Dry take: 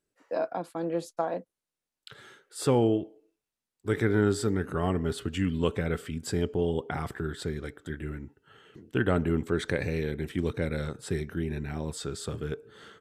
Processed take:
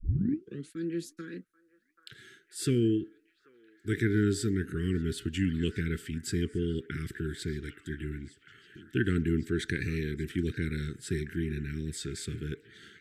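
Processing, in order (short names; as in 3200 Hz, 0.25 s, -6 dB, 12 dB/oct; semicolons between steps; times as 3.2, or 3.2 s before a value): tape start at the beginning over 0.73 s; elliptic band-stop 370–1600 Hz, stop band 50 dB; delay with a stepping band-pass 0.785 s, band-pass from 1000 Hz, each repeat 0.7 oct, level -11 dB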